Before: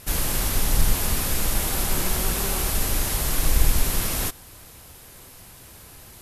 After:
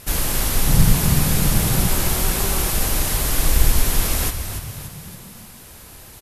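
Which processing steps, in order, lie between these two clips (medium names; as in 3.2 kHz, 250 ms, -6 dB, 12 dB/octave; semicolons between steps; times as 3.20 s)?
0.66–1.88 s: peaking EQ 150 Hz +14.5 dB 1 oct; frequency-shifting echo 288 ms, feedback 52%, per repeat -41 Hz, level -9 dB; trim +3 dB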